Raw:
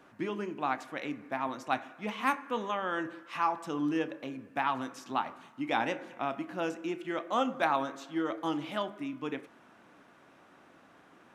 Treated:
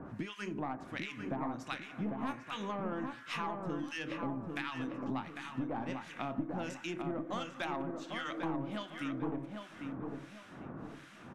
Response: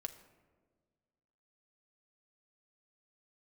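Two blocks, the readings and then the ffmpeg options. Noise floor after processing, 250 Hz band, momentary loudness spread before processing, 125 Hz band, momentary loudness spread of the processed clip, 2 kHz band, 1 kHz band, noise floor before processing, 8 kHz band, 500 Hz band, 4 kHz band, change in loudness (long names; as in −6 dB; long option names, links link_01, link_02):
−53 dBFS, −2.5 dB, 8 LU, +4.0 dB, 7 LU, −5.5 dB, −8.5 dB, −60 dBFS, −3.0 dB, −6.5 dB, −3.0 dB, −6.0 dB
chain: -filter_complex "[0:a]lowpass=11000,acrossover=split=1400[link_01][link_02];[link_01]aeval=exprs='val(0)*(1-1/2+1/2*cos(2*PI*1.4*n/s))':channel_layout=same[link_03];[link_02]aeval=exprs='val(0)*(1-1/2-1/2*cos(2*PI*1.4*n/s))':channel_layout=same[link_04];[link_03][link_04]amix=inputs=2:normalize=0,bass=frequency=250:gain=13,treble=frequency=4000:gain=2,aeval=exprs='(tanh(14.1*val(0)+0.4)-tanh(0.4))/14.1':channel_layout=same,acompressor=threshold=-48dB:ratio=6,asplit=2[link_05][link_06];[link_06]adelay=799,lowpass=frequency=2000:poles=1,volume=-4dB,asplit=2[link_07][link_08];[link_08]adelay=799,lowpass=frequency=2000:poles=1,volume=0.38,asplit=2[link_09][link_10];[link_10]adelay=799,lowpass=frequency=2000:poles=1,volume=0.38,asplit=2[link_11][link_12];[link_12]adelay=799,lowpass=frequency=2000:poles=1,volume=0.38,asplit=2[link_13][link_14];[link_14]adelay=799,lowpass=frequency=2000:poles=1,volume=0.38[link_15];[link_07][link_09][link_11][link_13][link_15]amix=inputs=5:normalize=0[link_16];[link_05][link_16]amix=inputs=2:normalize=0,volume=11dB"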